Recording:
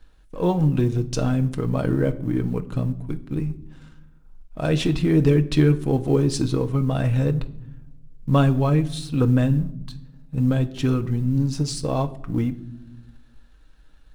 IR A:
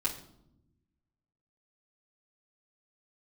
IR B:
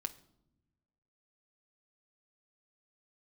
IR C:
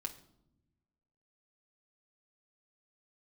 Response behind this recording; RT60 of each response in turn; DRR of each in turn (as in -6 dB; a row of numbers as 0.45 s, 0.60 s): B; no single decay rate, no single decay rate, no single decay rate; -6.0 dB, 7.0 dB, 2.0 dB